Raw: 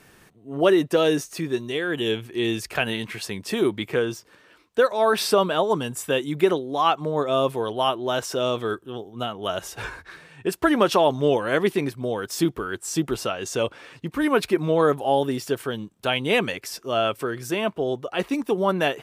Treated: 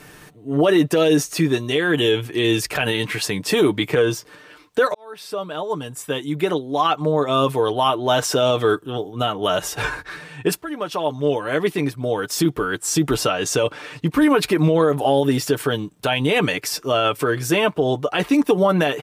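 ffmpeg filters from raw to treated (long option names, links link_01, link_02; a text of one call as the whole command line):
ffmpeg -i in.wav -filter_complex "[0:a]asplit=3[link_01][link_02][link_03];[link_01]atrim=end=4.94,asetpts=PTS-STARTPTS,afade=type=out:start_time=4.936:duration=0.004:curve=hsin[link_04];[link_02]atrim=start=4.94:end=10.62,asetpts=PTS-STARTPTS,afade=type=in:duration=3.39,afade=type=out:start_time=5.676:duration=0.004:curve=hsin:silence=0.0707946[link_05];[link_03]atrim=start=10.62,asetpts=PTS-STARTPTS,afade=type=in:duration=2.58:silence=0.0707946[link_06];[link_04][link_05][link_06]concat=n=3:v=0:a=1,aecho=1:1:6.7:0.5,alimiter=level_in=15dB:limit=-1dB:release=50:level=0:latency=1,volume=-7dB" out.wav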